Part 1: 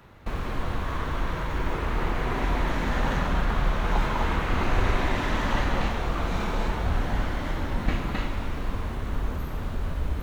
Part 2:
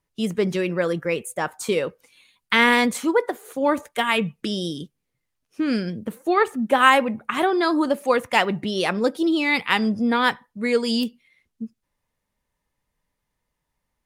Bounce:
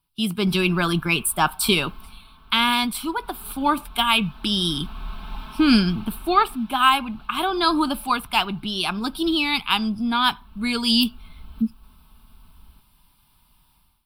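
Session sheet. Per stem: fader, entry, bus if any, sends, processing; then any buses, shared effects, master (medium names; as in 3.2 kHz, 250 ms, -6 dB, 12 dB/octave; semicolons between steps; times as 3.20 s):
-18.0 dB, 0.20 s, no send, echo send -4.5 dB, comb 4.6 ms, depth 80%; auto duck -9 dB, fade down 1.35 s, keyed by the second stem
+2.0 dB, 0.00 s, no send, no echo send, none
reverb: none
echo: feedback delay 1187 ms, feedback 15%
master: treble shelf 2.8 kHz +9.5 dB; level rider gain up to 15 dB; static phaser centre 1.9 kHz, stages 6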